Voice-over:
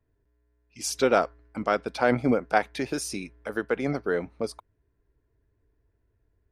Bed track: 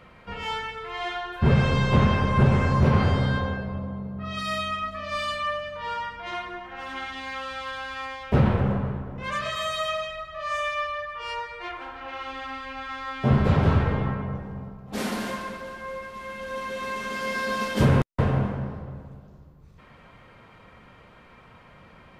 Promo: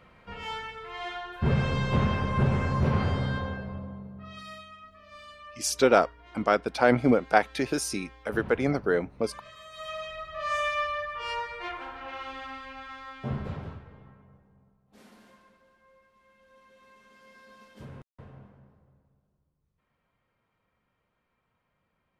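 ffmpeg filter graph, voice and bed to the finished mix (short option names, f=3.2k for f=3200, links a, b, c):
-filter_complex "[0:a]adelay=4800,volume=1.5dB[a];[1:a]volume=13dB,afade=t=out:st=3.71:d=0.96:silence=0.211349,afade=t=in:st=9.71:d=0.7:silence=0.11885,afade=t=out:st=11.53:d=2.28:silence=0.0530884[b];[a][b]amix=inputs=2:normalize=0"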